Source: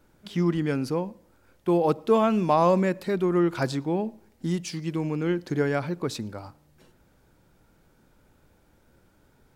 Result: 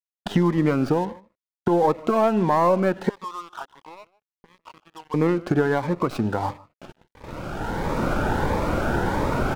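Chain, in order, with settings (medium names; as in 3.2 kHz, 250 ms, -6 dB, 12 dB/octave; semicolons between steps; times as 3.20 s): tracing distortion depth 0.18 ms; recorder AGC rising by 14 dB/s; low-pass 2.2 kHz 6 dB/octave; gate -43 dBFS, range -16 dB; peaking EQ 950 Hz +12 dB 2 oct; compression 3:1, threshold -25 dBFS, peak gain reduction 13.5 dB; 3.09–5.14 s: auto-wah 500–1100 Hz, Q 6.5, up, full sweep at -26 dBFS; crossover distortion -46.5 dBFS; echo from a far wall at 26 m, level -22 dB; loudness maximiser +14.5 dB; Shepard-style phaser rising 1.5 Hz; trim -6 dB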